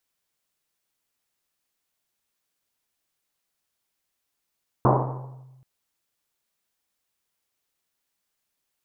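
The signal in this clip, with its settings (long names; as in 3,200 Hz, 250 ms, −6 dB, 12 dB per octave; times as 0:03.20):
drum after Risset length 0.78 s, pitch 130 Hz, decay 1.46 s, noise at 690 Hz, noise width 770 Hz, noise 55%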